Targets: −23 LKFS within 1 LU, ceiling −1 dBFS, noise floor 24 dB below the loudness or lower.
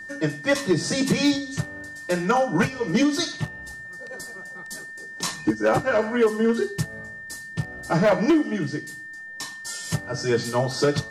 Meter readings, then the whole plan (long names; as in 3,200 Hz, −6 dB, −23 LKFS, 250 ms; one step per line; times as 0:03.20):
share of clipped samples 0.8%; peaks flattened at −13.0 dBFS; interfering tone 1,800 Hz; level of the tone −36 dBFS; integrated loudness −24.0 LKFS; sample peak −13.0 dBFS; target loudness −23.0 LKFS
→ clipped peaks rebuilt −13 dBFS
notch filter 1,800 Hz, Q 30
level +1 dB